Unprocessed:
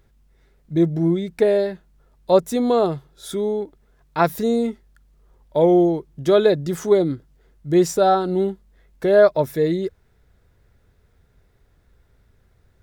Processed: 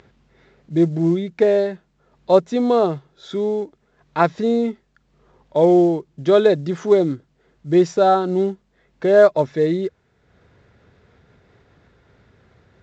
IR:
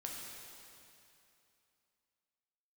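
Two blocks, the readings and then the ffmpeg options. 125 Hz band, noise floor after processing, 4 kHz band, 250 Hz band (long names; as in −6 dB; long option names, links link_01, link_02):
+0.5 dB, −64 dBFS, −1.0 dB, +1.5 dB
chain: -af "acompressor=mode=upward:threshold=-39dB:ratio=2.5,highpass=120,lowpass=4000,volume=1.5dB" -ar 16000 -c:a pcm_mulaw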